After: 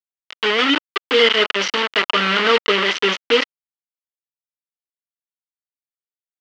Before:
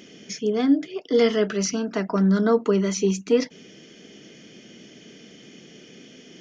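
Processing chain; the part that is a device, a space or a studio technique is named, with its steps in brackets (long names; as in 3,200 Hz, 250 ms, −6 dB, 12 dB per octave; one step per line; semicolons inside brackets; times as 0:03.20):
hand-held game console (bit reduction 4 bits; loudspeaker in its box 460–4,500 Hz, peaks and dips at 720 Hz −8 dB, 1,300 Hz +5 dB, 2,000 Hz +6 dB, 3,000 Hz +10 dB)
level +6 dB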